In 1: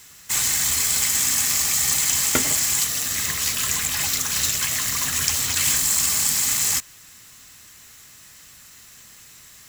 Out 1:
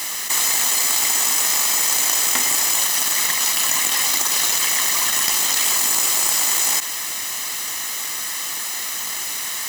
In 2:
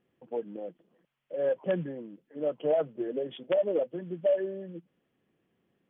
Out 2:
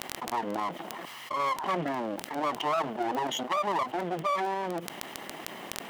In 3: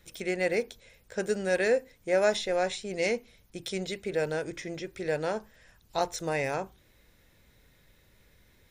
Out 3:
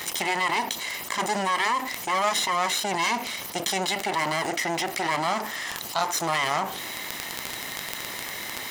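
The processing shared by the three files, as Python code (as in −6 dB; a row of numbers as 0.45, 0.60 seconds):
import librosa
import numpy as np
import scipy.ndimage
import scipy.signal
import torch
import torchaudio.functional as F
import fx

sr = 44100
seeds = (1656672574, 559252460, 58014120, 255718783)

p1 = fx.lower_of_two(x, sr, delay_ms=1.0)
p2 = scipy.signal.sosfilt(scipy.signal.butter(2, 380.0, 'highpass', fs=sr, output='sos'), p1)
p3 = fx.level_steps(p2, sr, step_db=9)
p4 = p2 + F.gain(torch.from_numpy(p3), -1.5).numpy()
p5 = fx.dmg_crackle(p4, sr, seeds[0], per_s=11.0, level_db=-37.0)
p6 = fx.env_flatten(p5, sr, amount_pct=70)
y = F.gain(torch.from_numpy(p6), -1.0).numpy()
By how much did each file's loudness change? +2.0, −0.5, +4.0 LU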